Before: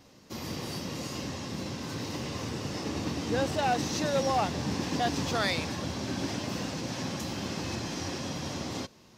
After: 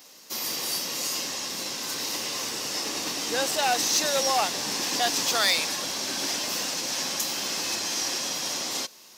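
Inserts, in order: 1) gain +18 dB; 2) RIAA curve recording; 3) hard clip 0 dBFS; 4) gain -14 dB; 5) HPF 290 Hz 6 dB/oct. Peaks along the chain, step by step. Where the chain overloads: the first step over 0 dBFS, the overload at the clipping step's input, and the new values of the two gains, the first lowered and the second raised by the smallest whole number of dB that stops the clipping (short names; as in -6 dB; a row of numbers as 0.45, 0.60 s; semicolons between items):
-1.0, +7.0, 0.0, -14.0, -12.5 dBFS; step 2, 7.0 dB; step 1 +11 dB, step 4 -7 dB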